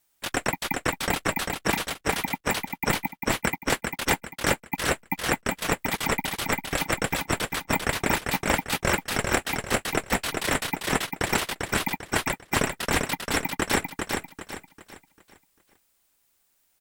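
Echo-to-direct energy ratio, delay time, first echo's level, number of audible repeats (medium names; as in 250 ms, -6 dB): -4.0 dB, 396 ms, -4.5 dB, 4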